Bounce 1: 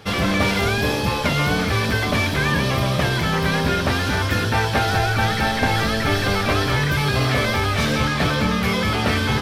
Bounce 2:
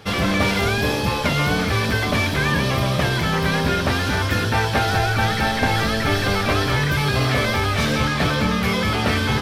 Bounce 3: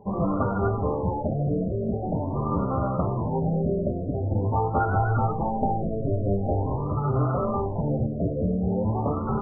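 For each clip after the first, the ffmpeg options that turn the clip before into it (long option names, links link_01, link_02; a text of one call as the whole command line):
ffmpeg -i in.wav -af anull out.wav
ffmpeg -i in.wav -af "flanger=delay=5:depth=6.5:regen=28:speed=0.53:shape=sinusoidal,afftfilt=real='re*lt(b*sr/1024,700*pow(1500/700,0.5+0.5*sin(2*PI*0.45*pts/sr)))':imag='im*lt(b*sr/1024,700*pow(1500/700,0.5+0.5*sin(2*PI*0.45*pts/sr)))':win_size=1024:overlap=0.75" out.wav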